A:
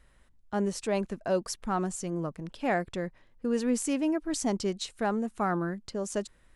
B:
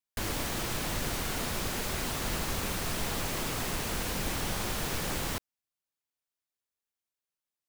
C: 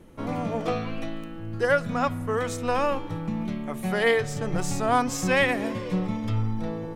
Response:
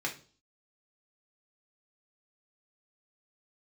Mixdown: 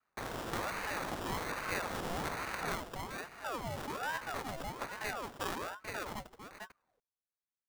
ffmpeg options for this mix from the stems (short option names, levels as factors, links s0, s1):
-filter_complex "[0:a]volume=1.26,asplit=3[s0][s1][s2];[s1]volume=0.0841[s3];[s2]volume=0.224[s4];[1:a]volume=0.794,afade=t=out:st=2.67:d=0.22:silence=0.237137[s5];[s0]agate=range=0.0224:threshold=0.00562:ratio=3:detection=peak,alimiter=level_in=1.26:limit=0.0631:level=0:latency=1:release=265,volume=0.794,volume=1[s6];[3:a]atrim=start_sample=2205[s7];[s3][s7]afir=irnorm=-1:irlink=0[s8];[s4]aecho=0:1:446:1[s9];[s5][s6][s8][s9]amix=inputs=4:normalize=0,lowshelf=f=380:g=-9,acrusher=samples=21:mix=1:aa=0.000001,aeval=exprs='val(0)*sin(2*PI*820*n/s+820*0.6/1.2*sin(2*PI*1.2*n/s))':c=same"